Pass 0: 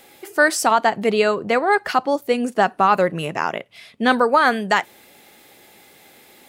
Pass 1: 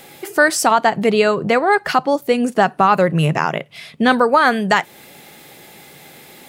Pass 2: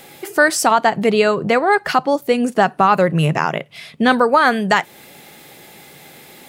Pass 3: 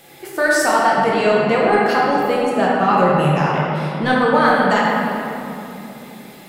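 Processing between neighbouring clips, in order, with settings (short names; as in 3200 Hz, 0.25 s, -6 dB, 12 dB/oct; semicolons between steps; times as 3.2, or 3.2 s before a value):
in parallel at +1.5 dB: compressor, threshold -25 dBFS, peak gain reduction 14 dB; on the sum: bell 150 Hz +11.5 dB 0.4 oct
nothing audible
in parallel at -8.5 dB: soft clip -9.5 dBFS, distortion -14 dB; on the sum: shoebox room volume 150 m³, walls hard, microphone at 0.81 m; gain -9 dB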